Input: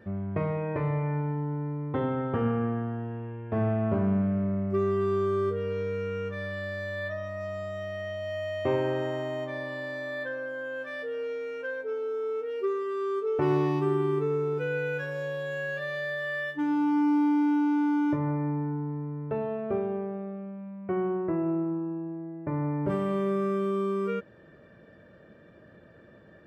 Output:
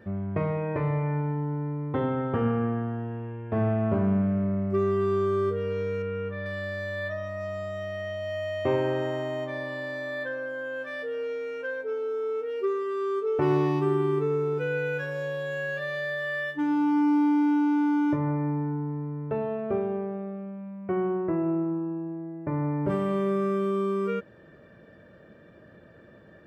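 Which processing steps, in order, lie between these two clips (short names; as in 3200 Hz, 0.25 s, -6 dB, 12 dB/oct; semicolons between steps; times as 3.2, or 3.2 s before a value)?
6.02–6.46 air absorption 250 m; gain +1.5 dB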